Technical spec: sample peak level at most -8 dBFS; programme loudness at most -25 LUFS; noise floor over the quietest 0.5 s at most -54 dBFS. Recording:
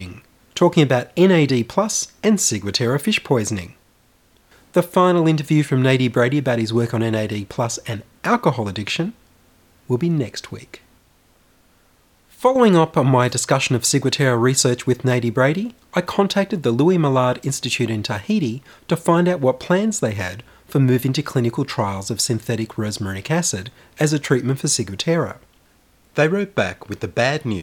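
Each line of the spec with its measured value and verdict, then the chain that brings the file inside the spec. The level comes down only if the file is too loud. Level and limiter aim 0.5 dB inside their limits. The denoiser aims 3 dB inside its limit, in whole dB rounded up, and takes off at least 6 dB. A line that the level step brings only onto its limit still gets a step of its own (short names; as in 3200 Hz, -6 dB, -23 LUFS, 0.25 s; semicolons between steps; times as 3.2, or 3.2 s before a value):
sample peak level -2.5 dBFS: fail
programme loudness -19.0 LUFS: fail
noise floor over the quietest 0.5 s -57 dBFS: OK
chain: gain -6.5 dB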